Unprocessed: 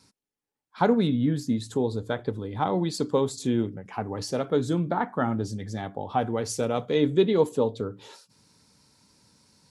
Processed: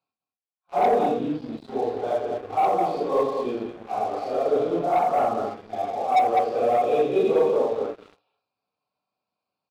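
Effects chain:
random phases in long frames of 200 ms
high-pass filter 56 Hz 24 dB per octave
downsampling to 11,025 Hz
formant filter a
low-shelf EQ 87 Hz +11 dB
on a send: multi-tap delay 86/202 ms −13.5/−7 dB
on the sum: leveller curve on the samples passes 3
dynamic equaliser 390 Hz, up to +8 dB, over −41 dBFS, Q 0.89

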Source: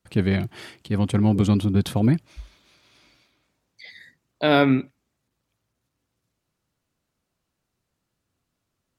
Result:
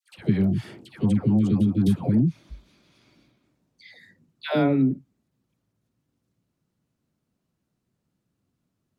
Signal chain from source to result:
parametric band 190 Hz +12.5 dB 2.3 octaves
downward compressor 6 to 1, threshold −11 dBFS, peak gain reduction 8.5 dB
all-pass dispersion lows, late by 136 ms, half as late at 800 Hz
level −5.5 dB

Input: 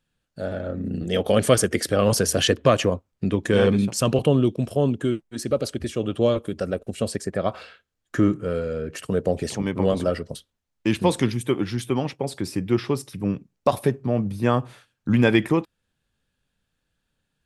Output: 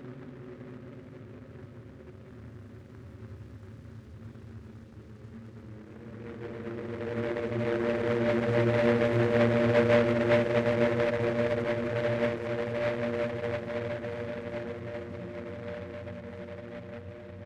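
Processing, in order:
harmonic-percussive split with one part muted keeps harmonic
parametric band 5,000 Hz −11.5 dB 2.8 octaves
output level in coarse steps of 23 dB
repeating echo 193 ms, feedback 38%, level −7 dB
extreme stretch with random phases 14×, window 0.50 s, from 0:05.59
short delay modulated by noise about 1,200 Hz, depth 0.11 ms

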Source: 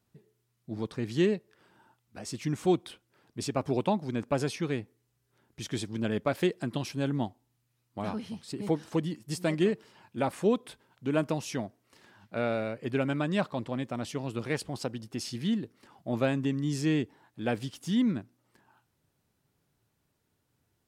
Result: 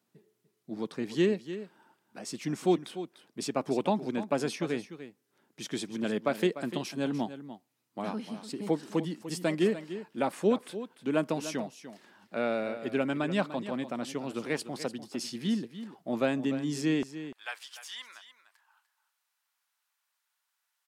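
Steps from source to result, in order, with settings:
high-pass filter 170 Hz 24 dB per octave, from 0:17.03 970 Hz
single-tap delay 296 ms −12.5 dB

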